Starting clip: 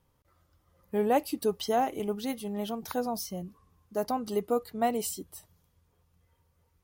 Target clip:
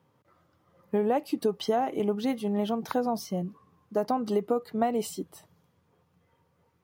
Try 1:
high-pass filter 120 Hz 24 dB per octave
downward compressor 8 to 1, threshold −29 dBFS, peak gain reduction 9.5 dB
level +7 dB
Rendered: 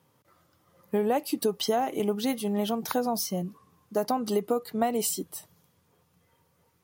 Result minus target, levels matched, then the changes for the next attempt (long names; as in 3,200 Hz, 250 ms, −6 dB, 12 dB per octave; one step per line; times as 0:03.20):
8,000 Hz band +10.0 dB
add after high-pass filter: parametric band 14,000 Hz −14 dB 2.1 octaves